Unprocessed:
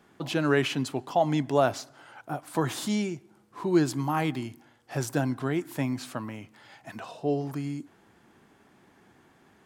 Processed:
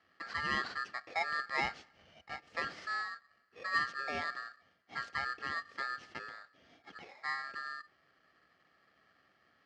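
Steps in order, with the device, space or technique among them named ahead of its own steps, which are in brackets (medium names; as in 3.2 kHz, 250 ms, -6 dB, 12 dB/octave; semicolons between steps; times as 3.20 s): ring modulator pedal into a guitar cabinet (polarity switched at an audio rate 1.5 kHz; cabinet simulation 87–4300 Hz, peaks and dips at 120 Hz -4 dB, 990 Hz -9 dB, 2.5 kHz -7 dB, 3.7 kHz -9 dB); trim -7.5 dB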